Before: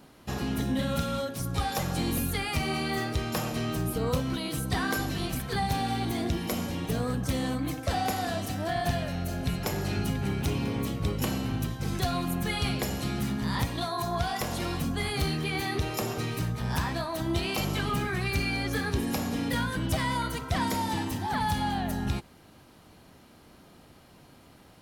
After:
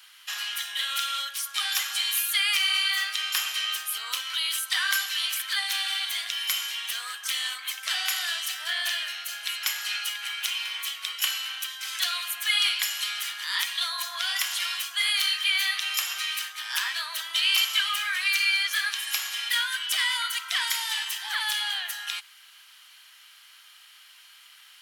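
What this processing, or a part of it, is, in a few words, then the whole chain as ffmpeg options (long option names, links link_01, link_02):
headphones lying on a table: -af "highpass=frequency=1500:width=0.5412,highpass=frequency=1500:width=1.3066,equalizer=frequency=3100:width_type=o:width=0.22:gain=8.5,volume=8.5dB"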